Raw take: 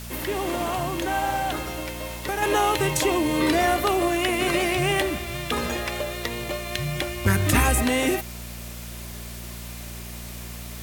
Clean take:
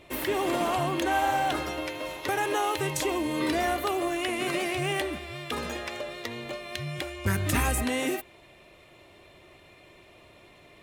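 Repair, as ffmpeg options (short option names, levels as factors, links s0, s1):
-af "bandreject=f=58.9:t=h:w=4,bandreject=f=117.8:t=h:w=4,bandreject=f=176.7:t=h:w=4,bandreject=f=235.6:t=h:w=4,afwtdn=0.0089,asetnsamples=n=441:p=0,asendcmd='2.42 volume volume -6dB',volume=1"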